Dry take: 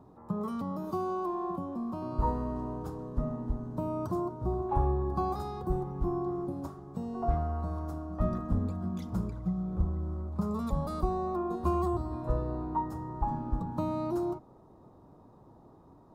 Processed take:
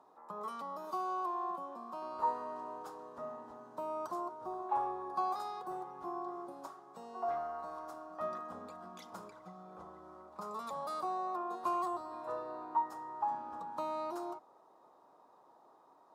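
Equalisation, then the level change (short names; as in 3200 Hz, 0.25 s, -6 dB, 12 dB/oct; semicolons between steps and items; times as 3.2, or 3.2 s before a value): band-pass 760 Hz, Q 0.8; differentiator; +18.0 dB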